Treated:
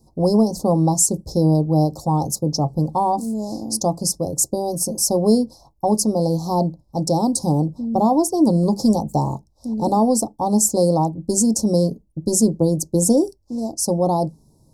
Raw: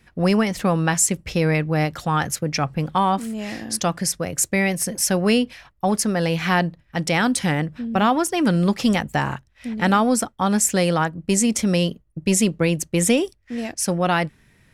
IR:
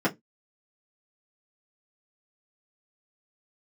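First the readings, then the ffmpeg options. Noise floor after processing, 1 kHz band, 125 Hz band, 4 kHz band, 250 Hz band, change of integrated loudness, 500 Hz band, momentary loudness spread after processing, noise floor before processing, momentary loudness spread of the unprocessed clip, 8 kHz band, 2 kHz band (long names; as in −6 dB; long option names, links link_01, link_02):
−58 dBFS, +0.5 dB, +2.0 dB, −3.5 dB, +2.5 dB, +1.5 dB, +3.0 dB, 8 LU, −59 dBFS, 8 LU, +2.0 dB, below −40 dB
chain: -filter_complex "[0:a]asuperstop=centerf=2100:order=12:qfactor=0.6,asplit=2[link_01][link_02];[1:a]atrim=start_sample=2205,afade=type=out:start_time=0.16:duration=0.01,atrim=end_sample=7497[link_03];[link_02][link_03]afir=irnorm=-1:irlink=0,volume=-24dB[link_04];[link_01][link_04]amix=inputs=2:normalize=0,volume=1.5dB"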